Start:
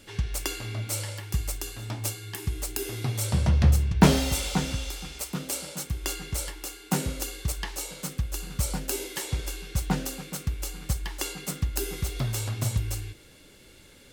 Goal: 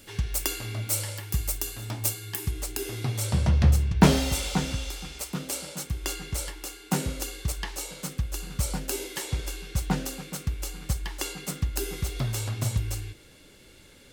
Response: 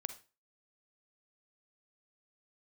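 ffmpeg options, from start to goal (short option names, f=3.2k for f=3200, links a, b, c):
-af "asetnsamples=n=441:p=0,asendcmd='2.51 highshelf g -2.5',highshelf=f=11k:g=11"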